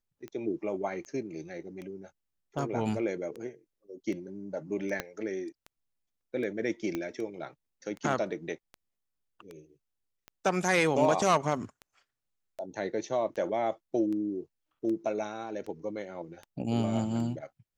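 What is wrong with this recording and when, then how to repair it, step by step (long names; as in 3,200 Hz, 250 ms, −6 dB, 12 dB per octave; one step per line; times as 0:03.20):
scratch tick 78 rpm −29 dBFS
0:05.00: click −16 dBFS
0:06.95: click −19 dBFS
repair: click removal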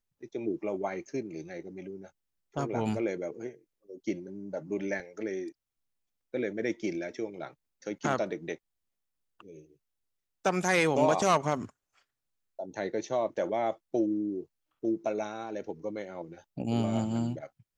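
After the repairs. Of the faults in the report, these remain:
0:05.00: click
0:06.95: click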